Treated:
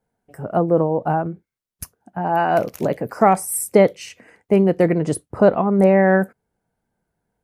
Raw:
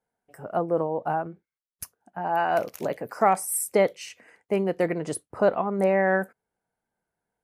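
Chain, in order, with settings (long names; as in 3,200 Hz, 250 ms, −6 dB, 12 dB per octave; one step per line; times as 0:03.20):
low-shelf EQ 350 Hz +11.5 dB
level +3.5 dB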